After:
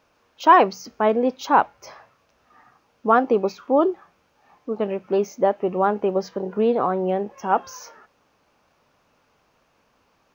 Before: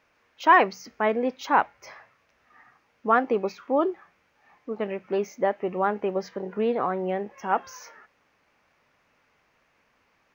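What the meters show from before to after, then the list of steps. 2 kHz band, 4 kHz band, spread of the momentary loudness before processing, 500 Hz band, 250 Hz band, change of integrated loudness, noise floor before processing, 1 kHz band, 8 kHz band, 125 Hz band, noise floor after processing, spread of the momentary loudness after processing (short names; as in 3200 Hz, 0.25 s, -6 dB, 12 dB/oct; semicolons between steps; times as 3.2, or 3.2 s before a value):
-1.5 dB, +3.5 dB, 15 LU, +5.0 dB, +5.5 dB, +4.5 dB, -68 dBFS, +4.5 dB, n/a, +5.5 dB, -65 dBFS, 14 LU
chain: bell 2000 Hz -10.5 dB 0.73 oct; gain +5.5 dB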